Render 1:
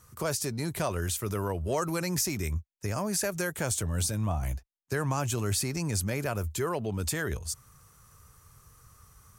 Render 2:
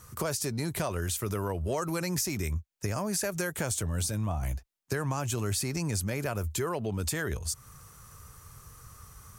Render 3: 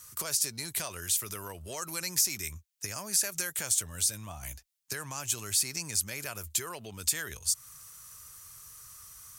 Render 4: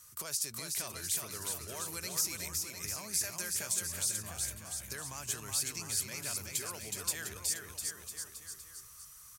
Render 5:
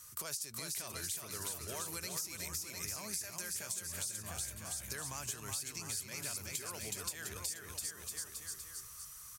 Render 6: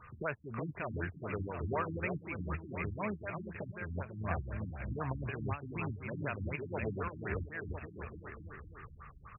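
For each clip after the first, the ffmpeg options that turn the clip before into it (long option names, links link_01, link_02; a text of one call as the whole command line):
ffmpeg -i in.wav -af "acompressor=threshold=-37dB:ratio=2.5,volume=6dB" out.wav
ffmpeg -i in.wav -af "tiltshelf=frequency=1500:gain=-10,volume=-3.5dB" out.wav
ffmpeg -i in.wav -af "aecho=1:1:370|703|1003|1272|1515:0.631|0.398|0.251|0.158|0.1,volume=-6dB" out.wav
ffmpeg -i in.wav -af "acompressor=threshold=-40dB:ratio=6,volume=2.5dB" out.wav
ffmpeg -i in.wav -af "afftfilt=real='re*lt(b*sr/1024,300*pow(2900/300,0.5+0.5*sin(2*PI*4*pts/sr)))':imag='im*lt(b*sr/1024,300*pow(2900/300,0.5+0.5*sin(2*PI*4*pts/sr)))':win_size=1024:overlap=0.75,volume=12dB" out.wav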